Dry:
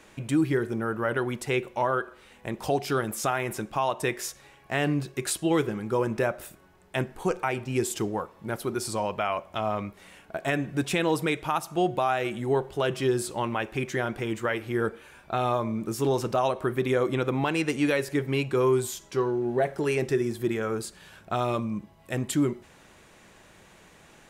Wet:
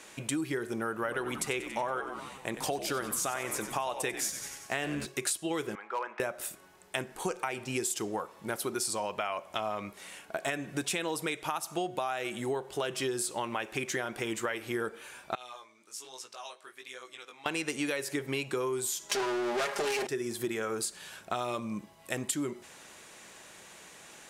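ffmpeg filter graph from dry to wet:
ffmpeg -i in.wav -filter_complex "[0:a]asettb=1/sr,asplit=3[link_01][link_02][link_03];[link_01]atrim=end=0.934[link_04];[link_02]atrim=start=0.93:end=5.06,asetpts=PTS-STARTPTS,afade=type=in:duration=0.004:curve=qsin,afade=type=out:start_time=4.126:duration=0.004:curve=qsin,bandreject=frequency=5200:width=20,asplit=8[link_05][link_06][link_07][link_08][link_09][link_10][link_11][link_12];[link_06]adelay=93,afreqshift=-78,volume=-11dB[link_13];[link_07]adelay=186,afreqshift=-156,volume=-15.4dB[link_14];[link_08]adelay=279,afreqshift=-234,volume=-19.9dB[link_15];[link_09]adelay=372,afreqshift=-312,volume=-24.3dB[link_16];[link_10]adelay=465,afreqshift=-390,volume=-28.7dB[link_17];[link_11]adelay=558,afreqshift=-468,volume=-33.2dB[link_18];[link_12]adelay=651,afreqshift=-546,volume=-37.6dB[link_19];[link_05][link_13][link_14][link_15][link_16][link_17][link_18][link_19]amix=inputs=8:normalize=0,atrim=end_sample=182133[link_20];[link_03]atrim=start=5.056[link_21];[link_04][link_20]acrossfade=duration=0.004:curve1=hsin:curve2=qsin[link_22];[link_22][link_21]acrossfade=duration=0.004:curve1=qsin:curve2=hsin,asettb=1/sr,asplit=3[link_23][link_24][link_25];[link_23]atrim=end=5.754[link_26];[link_24]atrim=start=5.75:end=6.2,asetpts=PTS-STARTPTS,afade=type=in:duration=0.004:curve=qsin,afade=type=out:start_time=0.446:duration=0.004:curve=qsin,asuperpass=centerf=1300:order=4:qfactor=0.79,volume=24dB,asoftclip=hard,volume=-24dB[link_27];[link_25]atrim=start=6.196[link_28];[link_26][link_27]acrossfade=duration=0.004:curve1=hsin:curve2=qsin[link_29];[link_29][link_28]acrossfade=duration=0.004:curve1=qsin:curve2=hsin,asettb=1/sr,asplit=3[link_30][link_31][link_32];[link_30]atrim=end=15.354[link_33];[link_31]atrim=start=15.35:end=17.46,asetpts=PTS-STARTPTS,afade=type=in:duration=0.004:curve=qsin,afade=type=out:start_time=2.106:duration=0.004:curve=qsin,aderivative,flanger=delay=15.5:depth=5.5:speed=1.2,adynamicsmooth=sensitivity=3.5:basefreq=5200[link_34];[link_32]atrim=start=17.456[link_35];[link_33][link_34]acrossfade=duration=0.004:curve1=hsin:curve2=qsin[link_36];[link_36][link_35]acrossfade=duration=0.004:curve1=qsin:curve2=hsin,asettb=1/sr,asplit=3[link_37][link_38][link_39];[link_37]atrim=end=19.094[link_40];[link_38]atrim=start=19.09:end=20.07,asetpts=PTS-STARTPTS,afade=type=in:duration=0.004:curve=qsin,afade=type=out:start_time=0.976:duration=0.004:curve=qsin,aeval=exprs='max(val(0),0)':channel_layout=same,aecho=1:1:4.9:0.85,atrim=end_sample=43218,asplit=2[link_41][link_42];[link_42]highpass=frequency=720:poles=1,volume=26dB,asoftclip=type=tanh:threshold=-12dB[link_43];[link_41][link_43]amix=inputs=2:normalize=0,lowpass=frequency=5900:poles=1,volume=-6dB[link_44];[link_39]atrim=start=20.066[link_45];[link_40][link_44]acrossfade=duration=0.004:curve1=hsin:curve2=qsin[link_46];[link_46][link_45]acrossfade=duration=0.004:curve1=qsin:curve2=hsin,lowpass=8900,aemphasis=mode=production:type=bsi,acompressor=threshold=-31dB:ratio=6,volume=1.5dB" out.wav

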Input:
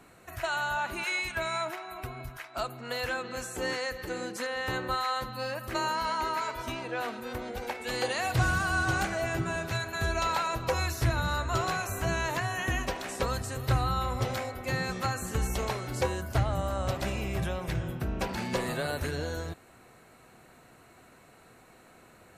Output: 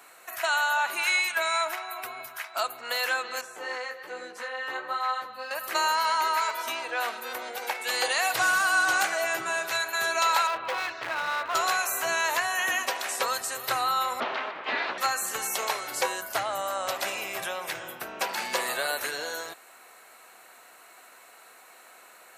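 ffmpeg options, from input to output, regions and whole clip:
ffmpeg -i in.wav -filter_complex "[0:a]asettb=1/sr,asplit=3[link_01][link_02][link_03];[link_01]atrim=end=3.414[link_04];[link_02]atrim=start=3.41:end=5.51,asetpts=PTS-STARTPTS,afade=type=in:duration=0.004:curve=qsin,afade=type=out:start_time=2.096:duration=0.004:curve=qsin,lowpass=frequency=1600:poles=1,flanger=delay=15.5:depth=4.4:speed=1.2[link_05];[link_03]atrim=start=5.506[link_06];[link_04][link_05]acrossfade=duration=0.004:curve1=hsin:curve2=qsin[link_07];[link_07][link_06]acrossfade=duration=0.004:curve1=qsin:curve2=hsin,asettb=1/sr,asplit=3[link_08][link_09][link_10];[link_08]atrim=end=10.474[link_11];[link_09]atrim=start=10.47:end=11.55,asetpts=PTS-STARTPTS,afade=type=in:duration=0.004:curve=qsin,afade=type=out:start_time=1.076:duration=0.004:curve=qsin,lowpass=frequency=3200:width=0.5412,lowpass=frequency=3200:width=1.3066,asoftclip=type=hard:threshold=-28.5dB[link_12];[link_10]atrim=start=11.546[link_13];[link_11][link_12]acrossfade=duration=0.004:curve1=hsin:curve2=qsin[link_14];[link_14][link_13]acrossfade=duration=0.004:curve1=qsin:curve2=hsin,asettb=1/sr,asplit=3[link_15][link_16][link_17];[link_15]atrim=end=14.204[link_18];[link_16]atrim=start=14.2:end=14.98,asetpts=PTS-STARTPTS,afade=type=in:duration=0.004:curve=qsin,afade=type=out:start_time=0.776:duration=0.004:curve=qsin,lowshelf=frequency=470:gain=7.5,aeval=exprs='abs(val(0))':channel_layout=same,lowpass=frequency=3500:width=0.5412,lowpass=frequency=3500:width=1.3066[link_19];[link_17]atrim=start=14.976[link_20];[link_18][link_19]acrossfade=duration=0.004:curve1=hsin:curve2=qsin[link_21];[link_21][link_20]acrossfade=duration=0.004:curve1=qsin:curve2=hsin,highpass=740,highshelf=frequency=11000:gain=9,volume=6.5dB" out.wav

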